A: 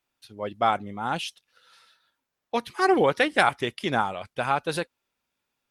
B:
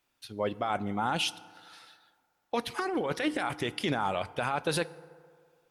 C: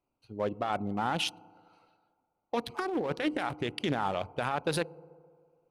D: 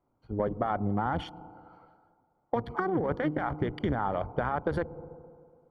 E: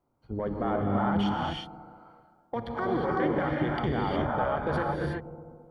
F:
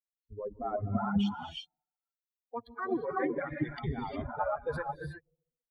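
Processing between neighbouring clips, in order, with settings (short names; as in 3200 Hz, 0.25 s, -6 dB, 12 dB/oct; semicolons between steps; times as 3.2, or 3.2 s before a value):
negative-ratio compressor -27 dBFS, ratio -1; limiter -18.5 dBFS, peak gain reduction 9 dB; FDN reverb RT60 2.1 s, low-frequency decay 0.75×, high-frequency decay 0.4×, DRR 17 dB
Wiener smoothing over 25 samples
octaver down 1 oct, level -3 dB; compressor, threshold -33 dBFS, peak gain reduction 9 dB; polynomial smoothing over 41 samples; gain +8 dB
dynamic EQ 3400 Hz, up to +4 dB, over -49 dBFS, Q 0.71; limiter -21 dBFS, peak gain reduction 7 dB; non-linear reverb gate 0.39 s rising, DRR -2.5 dB
per-bin expansion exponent 3; gain +2 dB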